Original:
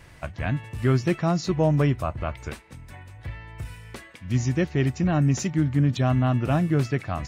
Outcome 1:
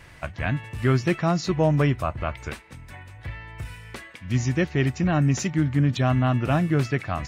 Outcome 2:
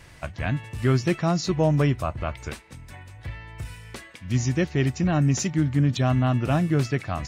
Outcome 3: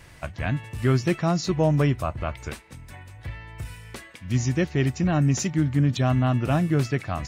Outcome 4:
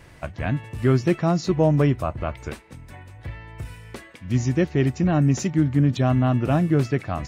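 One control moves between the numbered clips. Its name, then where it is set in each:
bell, frequency: 2000, 5800, 16000, 360 Hz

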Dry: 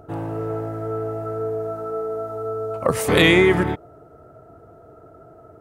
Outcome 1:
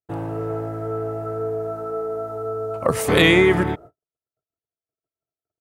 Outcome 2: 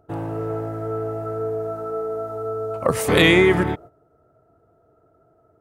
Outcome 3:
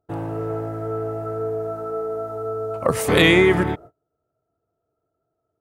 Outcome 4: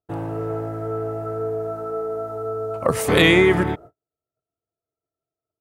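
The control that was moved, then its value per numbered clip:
gate, range: -57, -13, -31, -45 dB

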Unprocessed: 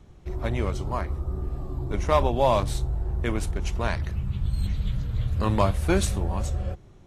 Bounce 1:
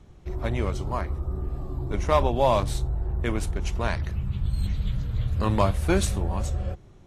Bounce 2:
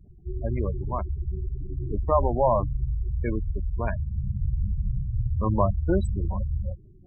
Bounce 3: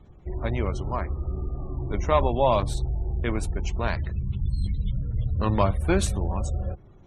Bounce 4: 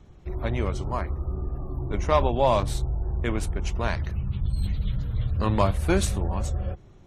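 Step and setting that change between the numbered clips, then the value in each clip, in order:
spectral gate, under each frame's peak: -60, -15, -35, -45 dB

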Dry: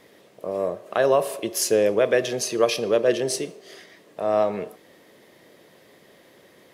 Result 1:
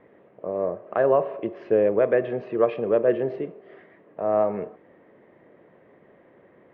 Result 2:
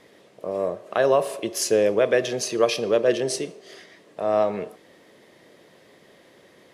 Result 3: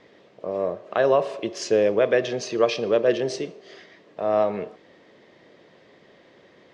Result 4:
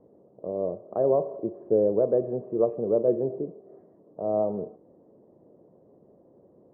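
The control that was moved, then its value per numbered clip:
Bessel low-pass, frequency: 1400, 10000, 4100, 520 Hz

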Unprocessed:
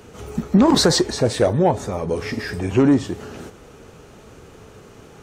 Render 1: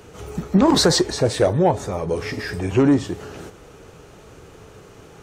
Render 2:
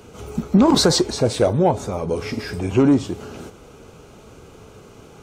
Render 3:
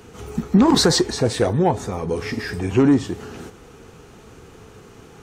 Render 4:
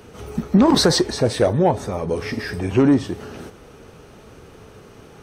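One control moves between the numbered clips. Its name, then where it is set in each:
notch, frequency: 230, 1800, 590, 7100 Hz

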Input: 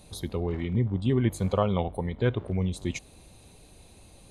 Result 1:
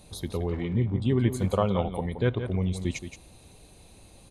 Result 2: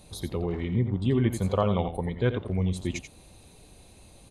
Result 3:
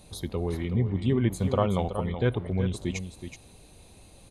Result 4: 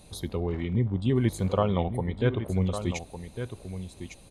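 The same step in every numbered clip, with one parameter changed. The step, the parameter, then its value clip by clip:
echo, time: 173, 87, 374, 1155 ms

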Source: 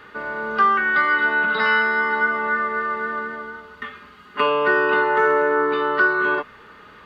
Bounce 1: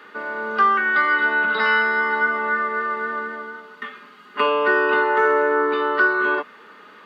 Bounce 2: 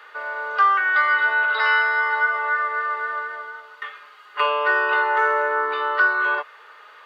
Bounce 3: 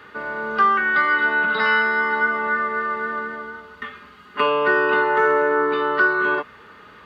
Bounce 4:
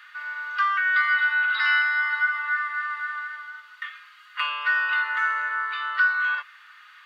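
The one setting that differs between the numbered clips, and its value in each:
HPF, cutoff: 200, 540, 48, 1400 Hz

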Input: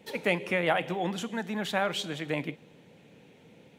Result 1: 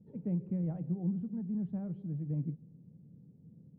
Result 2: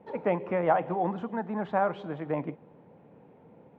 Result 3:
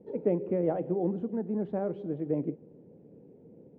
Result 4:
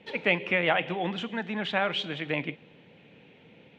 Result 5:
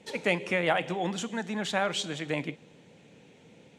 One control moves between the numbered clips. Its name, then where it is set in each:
synth low-pass, frequency: 160, 1000, 410, 2900, 7700 Hz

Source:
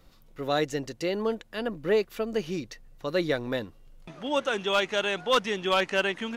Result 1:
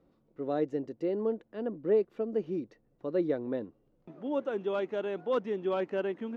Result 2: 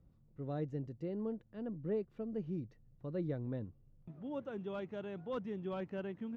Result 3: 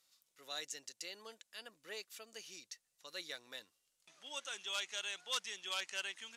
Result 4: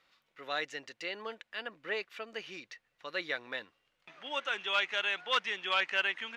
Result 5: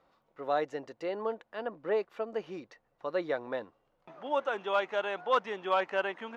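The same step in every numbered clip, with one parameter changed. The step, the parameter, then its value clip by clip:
band-pass, frequency: 330, 110, 8000, 2200, 850 Hz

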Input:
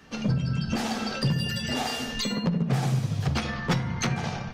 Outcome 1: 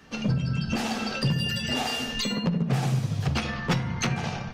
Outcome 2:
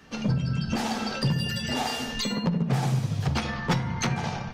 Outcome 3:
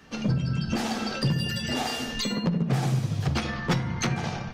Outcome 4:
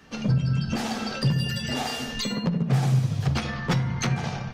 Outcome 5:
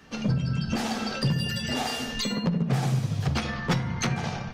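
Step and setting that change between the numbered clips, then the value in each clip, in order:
dynamic EQ, frequency: 2700, 900, 330, 130, 9800 Hz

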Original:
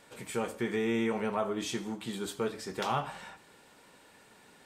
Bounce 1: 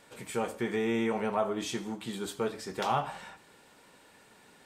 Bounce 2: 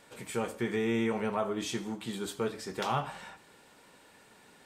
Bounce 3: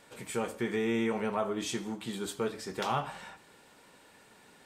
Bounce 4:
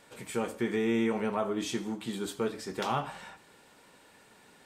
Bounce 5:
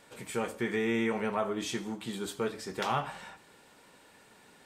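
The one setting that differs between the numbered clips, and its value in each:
dynamic EQ, frequency: 740, 110, 8000, 280, 1900 Hz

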